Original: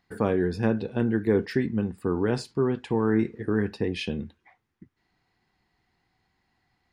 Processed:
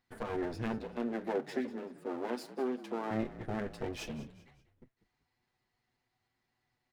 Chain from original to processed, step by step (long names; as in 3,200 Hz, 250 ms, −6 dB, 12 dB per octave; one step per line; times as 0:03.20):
lower of the sound and its delayed copy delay 8.1 ms
0:00.78–0:03.11: elliptic high-pass filter 230 Hz
echo with shifted repeats 192 ms, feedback 39%, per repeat −44 Hz, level −16 dB
level −8 dB